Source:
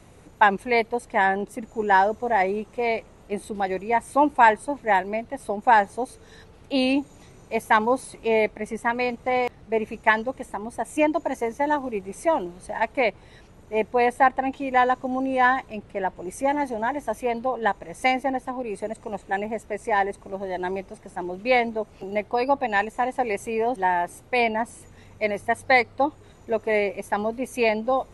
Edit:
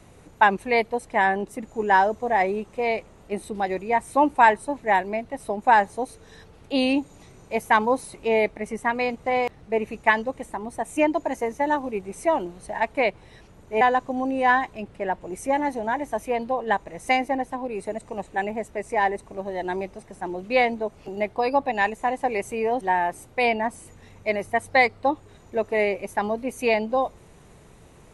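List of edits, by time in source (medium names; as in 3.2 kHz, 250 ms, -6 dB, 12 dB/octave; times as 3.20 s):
13.81–14.76 s: delete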